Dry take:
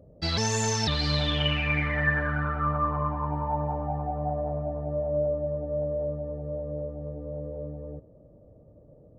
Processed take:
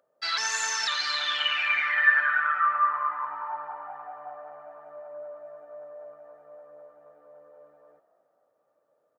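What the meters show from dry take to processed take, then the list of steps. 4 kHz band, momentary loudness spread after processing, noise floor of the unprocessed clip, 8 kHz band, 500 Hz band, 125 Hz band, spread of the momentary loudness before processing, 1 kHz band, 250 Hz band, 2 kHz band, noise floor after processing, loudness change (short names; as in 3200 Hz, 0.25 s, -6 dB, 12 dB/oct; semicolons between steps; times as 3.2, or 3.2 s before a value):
+1.5 dB, 23 LU, -54 dBFS, n/a, -13.5 dB, under -40 dB, 12 LU, +2.5 dB, under -25 dB, +6.5 dB, -73 dBFS, +4.0 dB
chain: resonant high-pass 1400 Hz, resonance Q 3; frequency-shifting echo 0.261 s, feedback 44%, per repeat +57 Hz, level -15 dB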